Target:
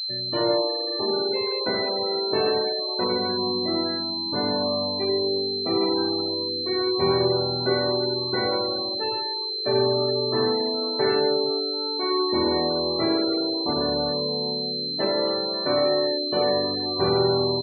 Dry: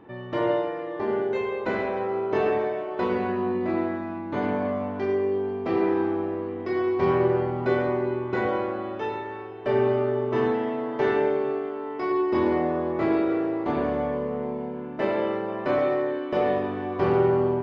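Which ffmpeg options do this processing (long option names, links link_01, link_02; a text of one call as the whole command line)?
ffmpeg -i in.wav -af "aecho=1:1:75|150|225|300:0.2|0.0818|0.0335|0.0138,afftfilt=real='re*gte(hypot(re,im),0.0447)':imag='im*gte(hypot(re,im),0.0447)':win_size=1024:overlap=0.75,aeval=exprs='val(0)+0.0447*sin(2*PI*4100*n/s)':channel_layout=same" out.wav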